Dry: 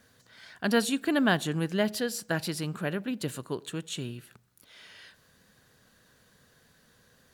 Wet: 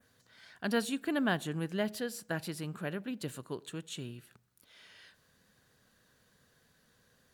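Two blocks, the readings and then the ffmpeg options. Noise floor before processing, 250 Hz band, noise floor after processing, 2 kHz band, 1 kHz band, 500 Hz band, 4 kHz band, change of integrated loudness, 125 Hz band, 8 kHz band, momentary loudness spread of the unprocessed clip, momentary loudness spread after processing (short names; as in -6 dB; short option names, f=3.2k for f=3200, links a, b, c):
-64 dBFS, -6.0 dB, -70 dBFS, -6.5 dB, -6.0 dB, -6.0 dB, -7.5 dB, -6.0 dB, -6.0 dB, -7.5 dB, 11 LU, 11 LU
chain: -filter_complex "[0:a]adynamicequalizer=threshold=0.00355:dfrequency=5000:dqfactor=1.2:tfrequency=5000:tqfactor=1.2:attack=5:release=100:ratio=0.375:range=2.5:mode=cutabove:tftype=bell,acrossover=split=5900[a][b];[b]volume=35dB,asoftclip=hard,volume=-35dB[c];[a][c]amix=inputs=2:normalize=0,volume=-6dB"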